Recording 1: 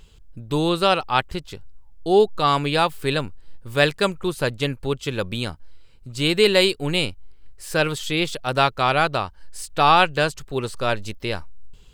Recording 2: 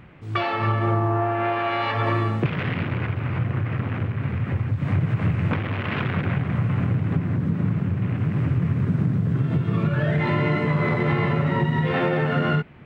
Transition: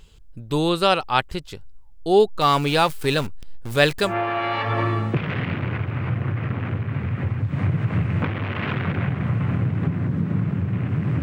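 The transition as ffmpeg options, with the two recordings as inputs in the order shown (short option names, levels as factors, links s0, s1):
-filter_complex "[0:a]asettb=1/sr,asplit=3[s0][s1][s2];[s0]atrim=end=2.414[s3];[s1]atrim=start=2.41:end=4.16,asetpts=PTS-STARTPTS,afade=t=in:d=0.004:c=qsin,afade=t=out:st=1.746:d=0.004:c=qsin,aeval=exprs='val(0)+0.5*0.0355*sgn(val(0))':c=same[s4];[s2]atrim=start=4.156[s5];[s3][s4]acrossfade=d=0.004:c1=hsin:c2=qsin[s6];[s6][s5]acrossfade=d=0.004:c1=qsin:c2=hsin,apad=whole_dur=11.22,atrim=end=11.22,atrim=end=4.16,asetpts=PTS-STARTPTS[s7];[1:a]atrim=start=1.29:end=8.51,asetpts=PTS-STARTPTS[s8];[s7][s8]acrossfade=d=0.16:c1=tri:c2=tri"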